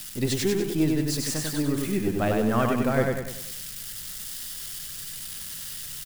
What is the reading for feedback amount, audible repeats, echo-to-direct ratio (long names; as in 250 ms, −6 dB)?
46%, 5, −2.0 dB